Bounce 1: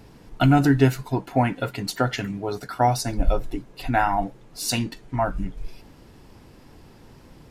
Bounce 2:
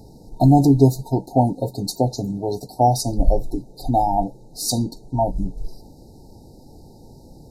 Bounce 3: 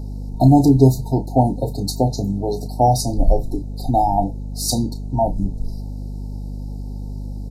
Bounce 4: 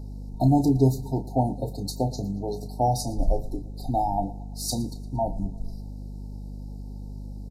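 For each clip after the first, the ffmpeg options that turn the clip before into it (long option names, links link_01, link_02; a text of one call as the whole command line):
ffmpeg -i in.wav -af "afftfilt=real='re*(1-between(b*sr/4096,930,3700))':imag='im*(1-between(b*sr/4096,930,3700))':win_size=4096:overlap=0.75,equalizer=frequency=3200:width_type=o:width=0.82:gain=-5,volume=4dB" out.wav
ffmpeg -i in.wav -filter_complex "[0:a]asplit=2[link_01][link_02];[link_02]adelay=31,volume=-10.5dB[link_03];[link_01][link_03]amix=inputs=2:normalize=0,aeval=exprs='val(0)+0.0398*(sin(2*PI*50*n/s)+sin(2*PI*2*50*n/s)/2+sin(2*PI*3*50*n/s)/3+sin(2*PI*4*50*n/s)/4+sin(2*PI*5*50*n/s)/5)':channel_layout=same,volume=1dB" out.wav
ffmpeg -i in.wav -af "aecho=1:1:115|230|345|460:0.1|0.05|0.025|0.0125,volume=-8dB" out.wav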